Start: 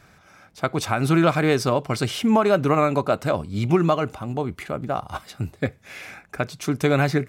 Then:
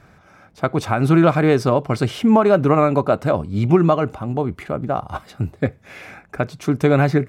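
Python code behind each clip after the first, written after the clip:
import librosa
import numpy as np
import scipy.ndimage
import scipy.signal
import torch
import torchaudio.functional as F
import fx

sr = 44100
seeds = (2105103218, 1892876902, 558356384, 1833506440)

y = fx.high_shelf(x, sr, hz=2100.0, db=-10.5)
y = y * 10.0 ** (5.0 / 20.0)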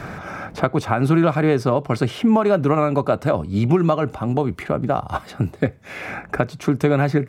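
y = fx.band_squash(x, sr, depth_pct=70)
y = y * 10.0 ** (-2.0 / 20.0)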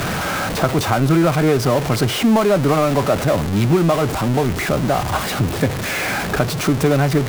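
y = x + 0.5 * 10.0 ** (-17.0 / 20.0) * np.sign(x)
y = y * 10.0 ** (-1.0 / 20.0)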